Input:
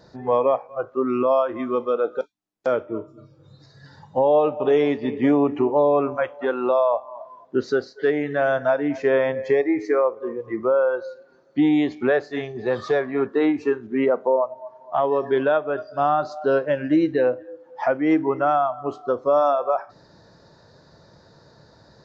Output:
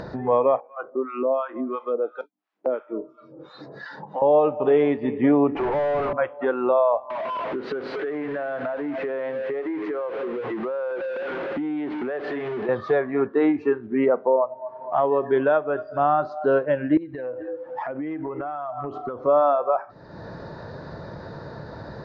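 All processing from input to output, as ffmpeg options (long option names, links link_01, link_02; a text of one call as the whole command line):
ffmpeg -i in.wav -filter_complex "[0:a]asettb=1/sr,asplit=3[link_01][link_02][link_03];[link_01]atrim=end=0.604[link_04];[link_02]atrim=start=0.6:end=4.22,asetpts=PTS-STARTPTS,afade=type=in:duration=0.004:curve=qsin,afade=type=out:start_time=3.616:duration=0.004:curve=qsin,highpass=frequency=220:width=0.5412,highpass=frequency=220:width=1.3066,acrossover=split=810[link_05][link_06];[link_05]aeval=exprs='val(0)*(1-1/2+1/2*cos(2*PI*2.9*n/s))':channel_layout=same[link_07];[link_06]aeval=exprs='val(0)*(1-1/2-1/2*cos(2*PI*2.9*n/s))':channel_layout=same[link_08];[link_07][link_08]amix=inputs=2:normalize=0[link_09];[link_03]atrim=start=4.216[link_10];[link_04][link_09]acrossfade=duration=0.004:curve1=hsin:curve2=qsin[link_11];[link_11][link_10]acrossfade=duration=0.004:curve1=qsin:curve2=hsin,asettb=1/sr,asplit=3[link_12][link_13][link_14];[link_12]atrim=end=5.554[link_15];[link_13]atrim=start=5.55:end=6.13,asetpts=PTS-STARTPTS,afade=type=in:duration=0.004:curve=qsin,afade=type=out:start_time=0.576:duration=0.004:curve=qsin,highpass=690,equalizer=frequency=1500:width_type=o:width=1.4:gain=-9,asplit=2[link_16][link_17];[link_17]highpass=frequency=720:poles=1,volume=36dB,asoftclip=type=tanh:threshold=-16.5dB[link_18];[link_16][link_18]amix=inputs=2:normalize=0,lowpass=frequency=1000:poles=1,volume=-6dB[link_19];[link_14]atrim=start=6.126[link_20];[link_15][link_19]acrossfade=duration=0.004:curve1=hsin:curve2=qsin[link_21];[link_21][link_20]acrossfade=duration=0.004:curve1=qsin:curve2=hsin,asettb=1/sr,asplit=3[link_22][link_23][link_24];[link_22]atrim=end=7.104[link_25];[link_23]atrim=start=7.1:end=12.69,asetpts=PTS-STARTPTS,afade=type=in:duration=0.004:curve=qsin,afade=type=out:start_time=5.586:duration=0.004:curve=qsin,aeval=exprs='val(0)+0.5*0.0501*sgn(val(0))':channel_layout=same,acrossover=split=160 3900:gain=0.158 1 0.1[link_26][link_27][link_28];[link_26][link_27][link_28]amix=inputs=3:normalize=0,acompressor=threshold=-28dB:ratio=5:attack=3.2:release=140:knee=1:detection=peak[link_29];[link_24]atrim=start=12.686[link_30];[link_25][link_29]acrossfade=duration=0.004:curve1=hsin:curve2=qsin[link_31];[link_31][link_30]acrossfade=duration=0.004:curve1=qsin:curve2=hsin,asettb=1/sr,asplit=3[link_32][link_33][link_34];[link_32]atrim=end=16.974[link_35];[link_33]atrim=start=16.97:end=19.21,asetpts=PTS-STARTPTS,afade=type=in:duration=0.004:curve=qsin,afade=type=out:start_time=2.236:duration=0.004:curve=qsin,aphaser=in_gain=1:out_gain=1:delay=2.8:decay=0.37:speed=1:type=triangular,acompressor=threshold=-31dB:ratio=16:attack=3.2:release=140:knee=1:detection=peak[link_36];[link_34]atrim=start=19.206[link_37];[link_35][link_36]acrossfade=duration=0.004:curve1=hsin:curve2=qsin[link_38];[link_38][link_37]acrossfade=duration=0.004:curve1=qsin:curve2=hsin,lowpass=2300,acompressor=mode=upward:threshold=-23dB:ratio=2.5" out.wav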